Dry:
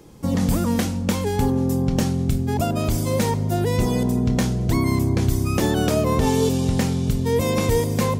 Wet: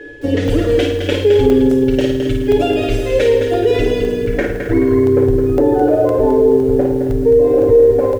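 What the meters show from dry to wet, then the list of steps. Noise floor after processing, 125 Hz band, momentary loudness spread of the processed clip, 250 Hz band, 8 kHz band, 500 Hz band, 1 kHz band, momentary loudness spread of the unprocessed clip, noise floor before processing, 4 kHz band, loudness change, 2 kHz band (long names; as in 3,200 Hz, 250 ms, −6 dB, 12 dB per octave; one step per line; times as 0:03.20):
−20 dBFS, −1.0 dB, 6 LU, +5.5 dB, can't be measured, +13.5 dB, +2.5 dB, 3 LU, −25 dBFS, +3.5 dB, +7.5 dB, +6.0 dB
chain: high-shelf EQ 4,800 Hz +4 dB
comb filter 6.9 ms, depth 100%
on a send: repeating echo 281 ms, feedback 55%, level −17 dB
on the sum: steady tone 1,700 Hz −39 dBFS
reverb reduction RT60 1.8 s
flutter between parallel walls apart 9.2 metres, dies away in 0.62 s
low-pass filter sweep 3,100 Hz → 850 Hz, 0:03.84–0:05.44
drawn EQ curve 110 Hz 0 dB, 150 Hz −24 dB, 340 Hz +11 dB, 510 Hz +9 dB, 740 Hz −4 dB, 1,100 Hz −14 dB, 1,500 Hz −1 dB, 2,400 Hz −3 dB, 4,500 Hz −6 dB, 13,000 Hz +6 dB
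boost into a limiter +7 dB
regular buffer underruns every 0.51 s, samples 64, zero, from 0:00.48
feedback echo at a low word length 214 ms, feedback 35%, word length 6 bits, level −6.5 dB
level −4 dB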